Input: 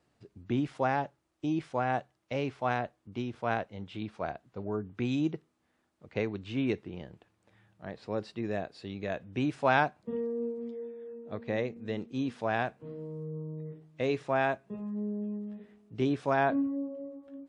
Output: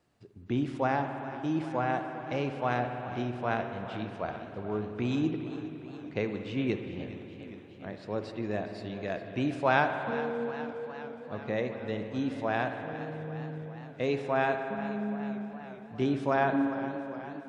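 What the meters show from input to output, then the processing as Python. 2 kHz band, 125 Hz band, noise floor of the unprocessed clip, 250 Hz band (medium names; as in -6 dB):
+1.5 dB, +1.5 dB, -75 dBFS, +1.0 dB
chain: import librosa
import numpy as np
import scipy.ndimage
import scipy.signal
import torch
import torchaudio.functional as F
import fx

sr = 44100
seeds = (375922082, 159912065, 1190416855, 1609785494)

y = fx.rev_spring(x, sr, rt60_s=3.0, pass_ms=(57,), chirp_ms=25, drr_db=6.5)
y = fx.echo_warbled(y, sr, ms=411, feedback_pct=71, rate_hz=2.8, cents=70, wet_db=-14.5)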